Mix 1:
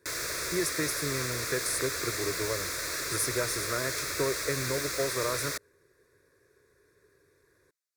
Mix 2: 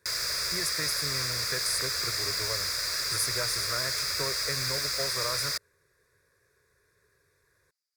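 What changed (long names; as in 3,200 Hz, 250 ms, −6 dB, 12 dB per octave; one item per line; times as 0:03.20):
background: add parametric band 4,900 Hz +14.5 dB 0.2 octaves
master: add parametric band 320 Hz −12 dB 1.1 octaves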